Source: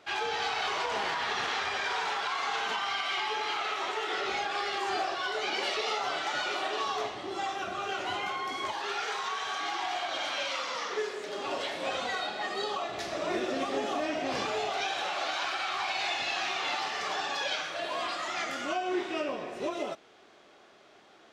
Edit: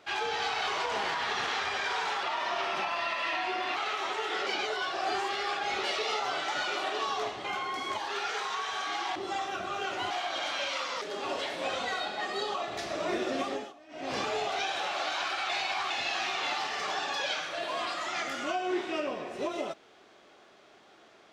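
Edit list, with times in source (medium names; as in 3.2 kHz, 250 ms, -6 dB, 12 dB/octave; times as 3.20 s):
2.23–3.55 s: speed 86%
4.25–5.62 s: reverse
7.23–8.18 s: move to 9.89 s
10.80–11.23 s: delete
13.66–14.39 s: dip -23 dB, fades 0.29 s
15.71–16.12 s: reverse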